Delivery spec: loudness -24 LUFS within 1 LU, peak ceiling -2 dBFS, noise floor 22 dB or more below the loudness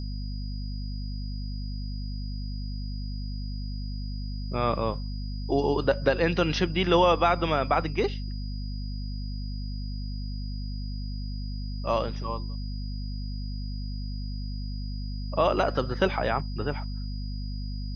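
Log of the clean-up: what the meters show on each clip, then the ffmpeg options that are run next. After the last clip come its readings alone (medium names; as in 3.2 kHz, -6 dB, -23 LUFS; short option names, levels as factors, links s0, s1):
hum 50 Hz; highest harmonic 250 Hz; hum level -30 dBFS; steady tone 4.9 kHz; tone level -46 dBFS; loudness -30.0 LUFS; peak level -8.0 dBFS; loudness target -24.0 LUFS
-> -af "bandreject=f=50:t=h:w=6,bandreject=f=100:t=h:w=6,bandreject=f=150:t=h:w=6,bandreject=f=200:t=h:w=6,bandreject=f=250:t=h:w=6"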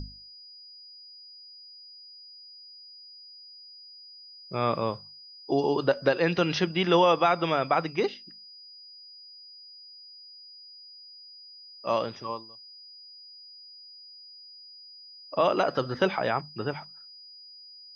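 hum not found; steady tone 4.9 kHz; tone level -46 dBFS
-> -af "bandreject=f=4900:w=30"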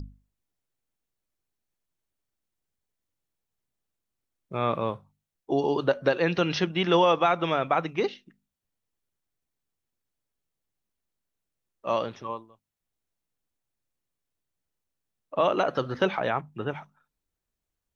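steady tone not found; loudness -26.5 LUFS; peak level -8.5 dBFS; loudness target -24.0 LUFS
-> -af "volume=1.33"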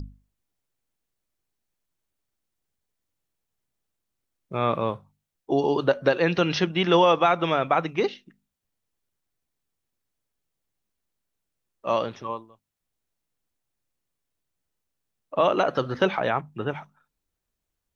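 loudness -24.0 LUFS; peak level -6.0 dBFS; noise floor -83 dBFS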